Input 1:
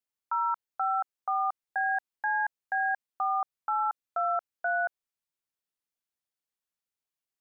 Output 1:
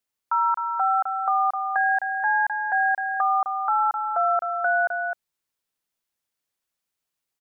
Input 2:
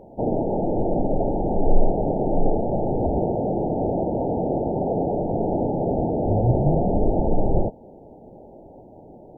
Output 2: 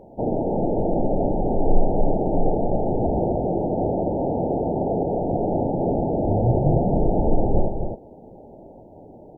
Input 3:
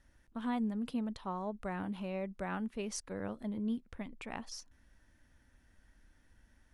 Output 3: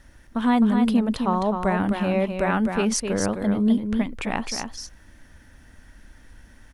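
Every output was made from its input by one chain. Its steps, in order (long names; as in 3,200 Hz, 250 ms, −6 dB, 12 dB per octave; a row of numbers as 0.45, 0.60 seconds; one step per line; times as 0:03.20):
single-tap delay 259 ms −6 dB
loudness normalisation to −23 LKFS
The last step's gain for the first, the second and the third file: +6.5, −0.5, +15.5 decibels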